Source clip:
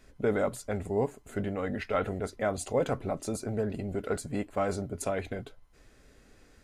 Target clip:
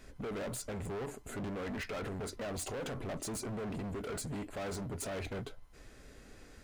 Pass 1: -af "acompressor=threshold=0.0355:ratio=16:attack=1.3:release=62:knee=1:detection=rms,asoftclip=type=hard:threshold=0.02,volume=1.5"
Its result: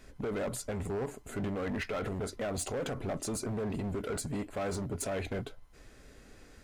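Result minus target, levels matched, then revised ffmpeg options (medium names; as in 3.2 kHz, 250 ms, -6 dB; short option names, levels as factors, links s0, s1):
hard clipper: distortion -5 dB
-af "acompressor=threshold=0.0355:ratio=16:attack=1.3:release=62:knee=1:detection=rms,asoftclip=type=hard:threshold=0.00944,volume=1.5"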